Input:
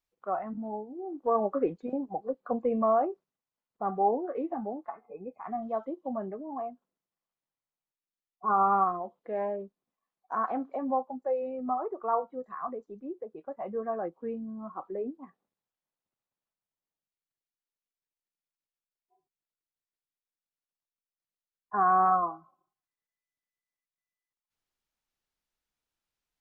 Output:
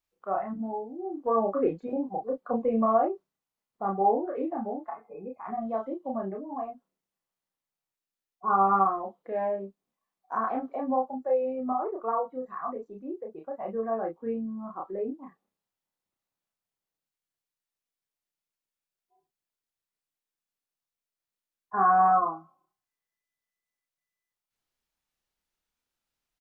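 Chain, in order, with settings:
double-tracking delay 31 ms −2 dB

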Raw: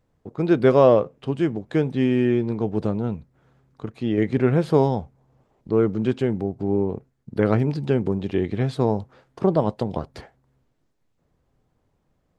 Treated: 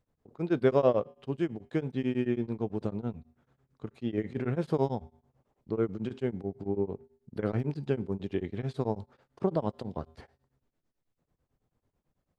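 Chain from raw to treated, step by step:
tuned comb filter 80 Hz, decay 0.64 s, harmonics odd, mix 40%
tremolo along a rectified sine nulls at 9.1 Hz
level −3 dB

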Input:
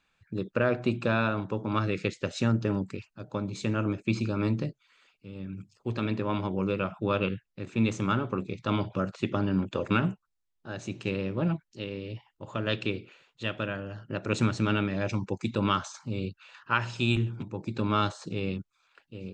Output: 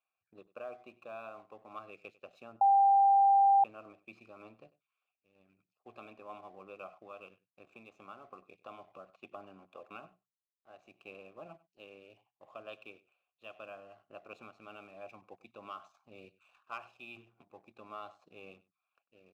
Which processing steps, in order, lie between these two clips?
0:06.98–0:09.10: downward compressor 4 to 1, threshold −32 dBFS, peak gain reduction 10.5 dB
mains-hum notches 60/120/180 Hz
speech leveller within 4 dB 0.5 s
formant filter a
leveller curve on the samples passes 1
single-tap delay 97 ms −20 dB
0:02.61–0:03.64: beep over 792 Hz −12.5 dBFS
level −8 dB

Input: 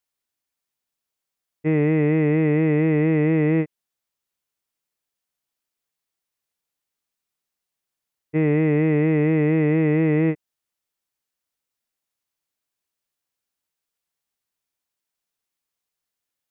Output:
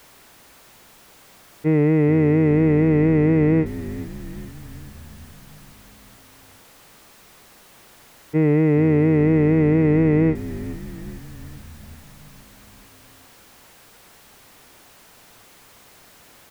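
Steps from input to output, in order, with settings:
converter with a step at zero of −37.5 dBFS
high-shelf EQ 2,500 Hz −10.5 dB
echo with shifted repeats 421 ms, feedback 62%, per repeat −60 Hz, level −15 dB
level +2 dB

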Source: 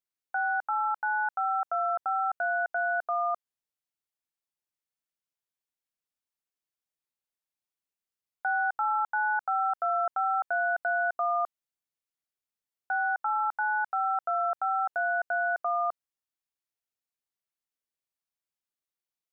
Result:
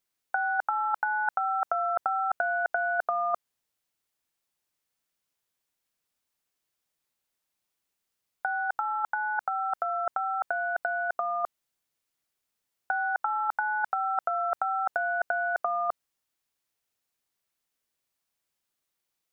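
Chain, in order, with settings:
compressor whose output falls as the input rises −31 dBFS, ratio −0.5
level +4.5 dB

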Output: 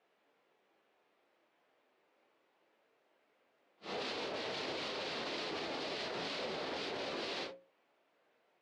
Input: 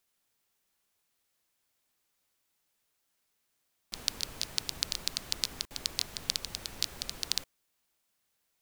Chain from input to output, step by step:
random phases in long frames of 200 ms
Chebyshev band-pass filter 450–2,600 Hz, order 2
tilt shelving filter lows +10 dB, about 760 Hz
mains-hum notches 60/120/180/240/300/360/420/480/540 Hz
brickwall limiter −47 dBFS, peak gain reduction 9 dB
level +15.5 dB

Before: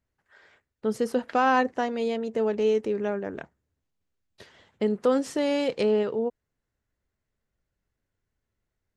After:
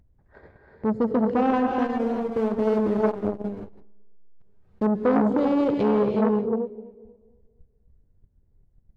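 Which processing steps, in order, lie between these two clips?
adaptive Wiener filter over 15 samples
RIAA equalisation playback
noise gate −58 dBFS, range −29 dB
parametric band 1,400 Hz −7.5 dB 0.89 octaves
upward compression, threshold −33 dBFS
0:01.83–0:04.86: slack as between gear wheels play −24 dBFS
tape delay 245 ms, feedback 39%, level −16 dB, low-pass 2,100 Hz
reverb whose tail is shaped and stops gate 400 ms rising, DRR 2 dB
saturating transformer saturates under 670 Hz

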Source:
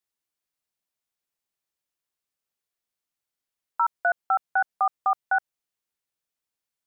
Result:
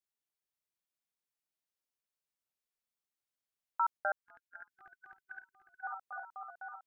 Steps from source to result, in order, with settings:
feedback echo with a long and a short gap by turns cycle 812 ms, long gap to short 1.5 to 1, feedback 48%, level −9.5 dB
0:04.26–0:05.83: gain on a spectral selection 390–1,500 Hz −29 dB
0:03.97–0:04.69: ring modulation 90 Hz
level −8 dB

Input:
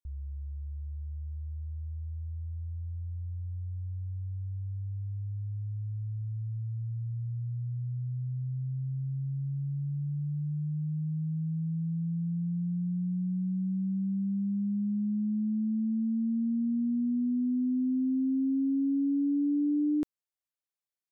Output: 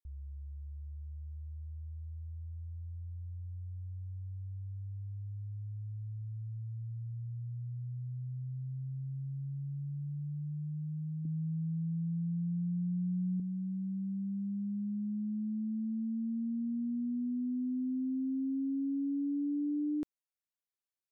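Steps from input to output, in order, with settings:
0:11.25–0:13.40: hollow resonant body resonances 300/460 Hz, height 14 dB, ringing for 35 ms
level −6 dB

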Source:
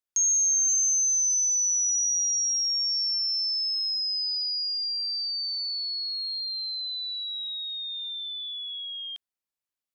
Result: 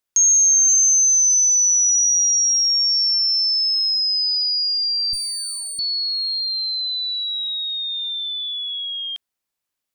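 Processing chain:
0:05.13–0:05.79: lower of the sound and its delayed copy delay 0.8 ms
level +8.5 dB

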